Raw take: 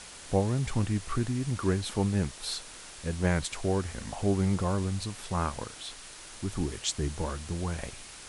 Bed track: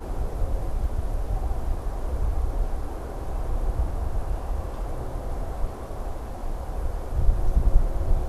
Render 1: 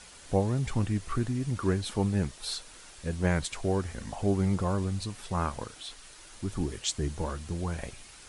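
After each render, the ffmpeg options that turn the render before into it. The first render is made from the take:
-af "afftdn=nr=6:nf=-47"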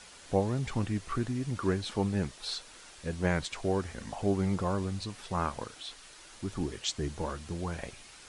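-filter_complex "[0:a]acrossover=split=7100[s0][s1];[s1]acompressor=threshold=0.00126:ratio=4:attack=1:release=60[s2];[s0][s2]amix=inputs=2:normalize=0,lowshelf=f=130:g=-7"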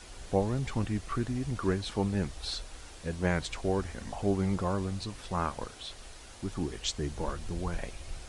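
-filter_complex "[1:a]volume=0.112[s0];[0:a][s0]amix=inputs=2:normalize=0"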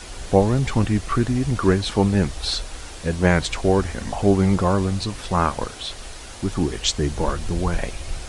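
-af "volume=3.76"

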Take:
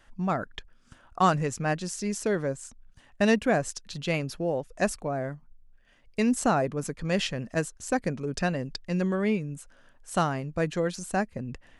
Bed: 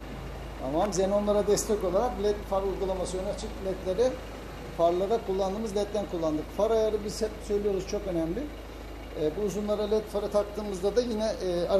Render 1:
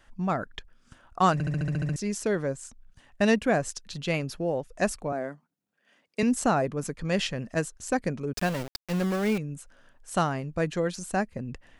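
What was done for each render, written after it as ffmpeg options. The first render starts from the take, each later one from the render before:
-filter_complex "[0:a]asettb=1/sr,asplit=3[s0][s1][s2];[s0]atrim=end=5.124[s3];[s1]atrim=start=5.12:end=6.23,asetpts=PTS-STARTPTS,afade=t=in:d=0.004:c=qsin,afade=t=out:st=1.106:d=0.004:c=qsin,highpass=f=190:w=0.5412,highpass=f=190:w=1.3066[s4];[s2]atrim=start=6.226[s5];[s3][s4]acrossfade=d=0.004:c1=hsin:c2=qsin[s6];[s6][s5]acrossfade=d=0.004:c1=qsin:c2=hsin,asettb=1/sr,asplit=3[s7][s8][s9];[s7]atrim=end=8.334[s10];[s8]atrim=start=8.33:end=9.38,asetpts=PTS-STARTPTS,afade=t=in:d=0.004:c=qsin,afade=t=out:st=1.046:d=0.004:c=qsin,aeval=exprs='val(0)*gte(abs(val(0)),0.0266)':c=same[s11];[s9]atrim=start=9.376[s12];[s10][s11]acrossfade=d=0.004:c1=hsin:c2=qsin[s13];[s13][s12]acrossfade=d=0.004:c1=qsin:c2=hsin,asplit=10[s14][s15][s16][s17][s18][s19][s20][s21][s22][s23];[s14]atrim=end=1.402[s24];[s15]atrim=start=1.328:end=1.402[s25];[s16]atrim=start=1.328:end=1.402[s26];[s17]atrim=start=1.328:end=1.402[s27];[s18]atrim=start=1.328:end=1.402[s28];[s19]atrim=start=1.328:end=1.402[s29];[s20]atrim=start=1.328:end=1.402[s30];[s21]atrim=start=1.328:end=1.402[s31];[s22]atrim=start=1.328:end=1.402[s32];[s23]atrim=start=1.958[s33];[s24][s25]acrossfade=d=0.004:c1=hsin:c2=hsin[s34];[s34][s26]acrossfade=d=0.004:c1=hsin:c2=hsin[s35];[s35][s27]acrossfade=d=0.004:c1=hsin:c2=hsin[s36];[s36][s28]acrossfade=d=0.004:c1=hsin:c2=hsin[s37];[s37][s29]acrossfade=d=0.004:c1=hsin:c2=hsin[s38];[s38][s30]acrossfade=d=0.004:c1=hsin:c2=hsin[s39];[s39][s31]acrossfade=d=0.004:c1=hsin:c2=hsin[s40];[s40][s32]acrossfade=d=0.004:c1=hsin:c2=hsin[s41];[s41][s33]acrossfade=d=0.004:c1=hsin:c2=hsin"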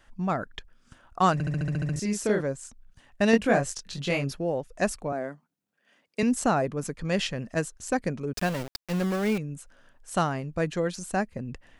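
-filter_complex "[0:a]asettb=1/sr,asplit=3[s0][s1][s2];[s0]atrim=end=1.934[s3];[s1]atrim=start=1.93:end=2.41,asetpts=PTS-STARTPTS,afade=t=in:d=0.004:c=qsin,afade=t=out:st=0.476:d=0.004:c=qsin,asplit=2[s4][s5];[s5]adelay=33,volume=0.708[s6];[s4][s6]amix=inputs=2:normalize=0,atrim=end_sample=21168[s7];[s2]atrim=start=2.406[s8];[s3][s7]acrossfade=d=0.004:c1=hsin:c2=qsin[s9];[s9][s8]acrossfade=d=0.004:c1=qsin:c2=hsin,asettb=1/sr,asplit=3[s10][s11][s12];[s10]atrim=end=3.314[s13];[s11]atrim=start=3.31:end=4.33,asetpts=PTS-STARTPTS,afade=t=in:d=0.004:c=qsin,afade=t=out:st=1.016:d=0.004:c=qsin,asplit=2[s14][s15];[s15]adelay=22,volume=0.708[s16];[s14][s16]amix=inputs=2:normalize=0,atrim=end_sample=44982[s17];[s12]atrim=start=4.326[s18];[s13][s17]acrossfade=d=0.004:c1=hsin:c2=qsin[s19];[s19][s18]acrossfade=d=0.004:c1=qsin:c2=hsin"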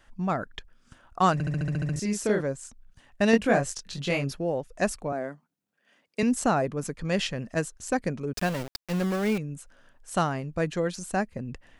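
-af anull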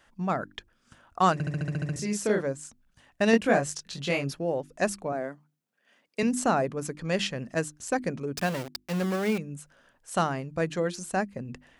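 -af "highpass=f=100:p=1,bandreject=f=50:t=h:w=6,bandreject=f=100:t=h:w=6,bandreject=f=150:t=h:w=6,bandreject=f=200:t=h:w=6,bandreject=f=250:t=h:w=6,bandreject=f=300:t=h:w=6,bandreject=f=350:t=h:w=6"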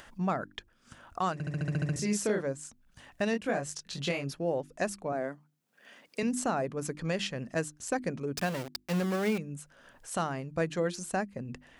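-af "acompressor=mode=upward:threshold=0.00631:ratio=2.5,alimiter=limit=0.1:level=0:latency=1:release=479"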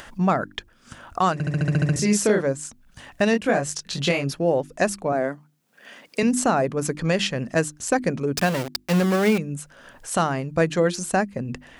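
-af "volume=3.16"

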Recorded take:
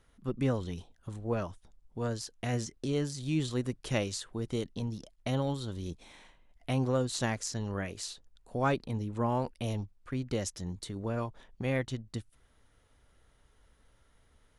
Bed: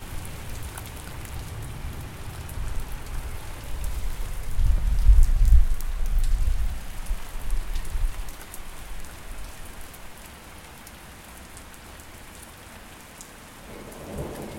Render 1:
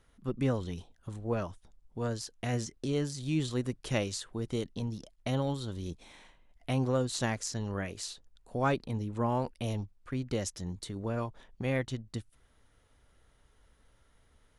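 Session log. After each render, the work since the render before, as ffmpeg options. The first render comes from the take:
-af anull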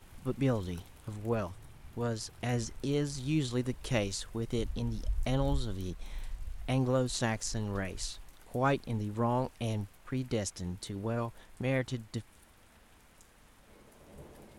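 -filter_complex "[1:a]volume=0.126[s0];[0:a][s0]amix=inputs=2:normalize=0"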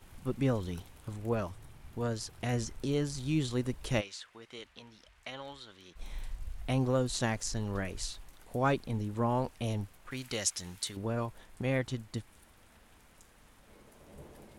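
-filter_complex "[0:a]asplit=3[s0][s1][s2];[s0]afade=t=out:st=4:d=0.02[s3];[s1]bandpass=f=2200:t=q:w=0.93,afade=t=in:st=4:d=0.02,afade=t=out:st=5.95:d=0.02[s4];[s2]afade=t=in:st=5.95:d=0.02[s5];[s3][s4][s5]amix=inputs=3:normalize=0,asettb=1/sr,asplit=3[s6][s7][s8];[s6]atrim=end=10.114[s9];[s7]atrim=start=10.11:end=10.97,asetpts=PTS-STARTPTS,afade=t=in:d=0.004:c=qsin,afade=t=out:st=0.856:d=0.004:c=qsin,tiltshelf=f=870:g=-8.5[s10];[s8]atrim=start=10.966[s11];[s9][s10]acrossfade=d=0.004:c1=hsin:c2=qsin[s12];[s12][s11]acrossfade=d=0.004:c1=qsin:c2=hsin"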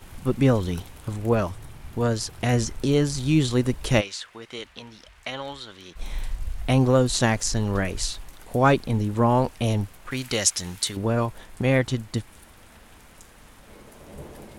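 -af "volume=3.35"

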